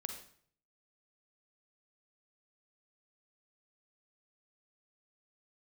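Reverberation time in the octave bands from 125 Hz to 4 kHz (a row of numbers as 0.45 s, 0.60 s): 0.80 s, 0.60 s, 0.60 s, 0.55 s, 0.50 s, 0.50 s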